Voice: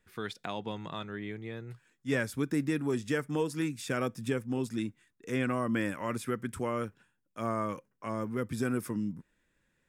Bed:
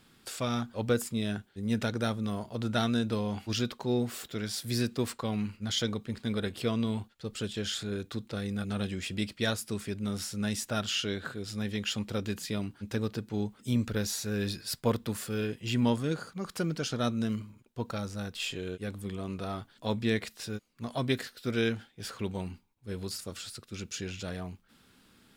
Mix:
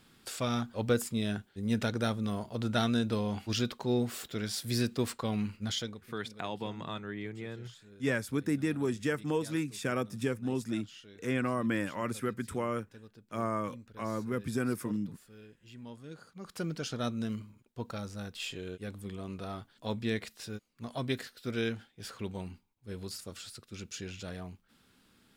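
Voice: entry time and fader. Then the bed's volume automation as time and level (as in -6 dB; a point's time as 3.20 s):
5.95 s, -0.5 dB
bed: 5.68 s -0.5 dB
6.17 s -21 dB
15.85 s -21 dB
16.64 s -4 dB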